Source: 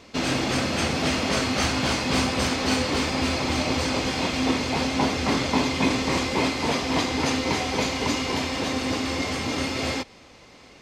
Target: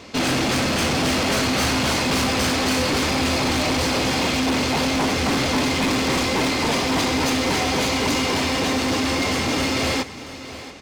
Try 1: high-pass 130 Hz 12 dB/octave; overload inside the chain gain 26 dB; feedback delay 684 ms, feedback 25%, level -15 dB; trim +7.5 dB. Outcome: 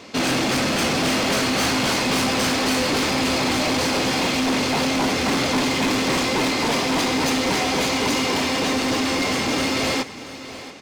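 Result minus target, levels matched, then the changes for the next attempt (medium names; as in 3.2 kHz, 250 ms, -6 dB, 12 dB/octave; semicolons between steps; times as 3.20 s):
125 Hz band -3.5 dB
change: high-pass 45 Hz 12 dB/octave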